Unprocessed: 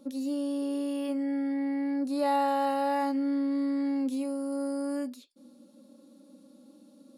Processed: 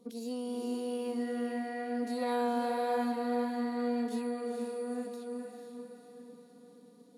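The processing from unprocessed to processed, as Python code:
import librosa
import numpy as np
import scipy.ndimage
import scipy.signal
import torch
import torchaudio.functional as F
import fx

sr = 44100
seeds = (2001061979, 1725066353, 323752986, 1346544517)

y = fx.pitch_keep_formants(x, sr, semitones=-2.5)
y = fx.echo_diffused(y, sr, ms=477, feedback_pct=48, wet_db=-4)
y = y * librosa.db_to_amplitude(-6.0)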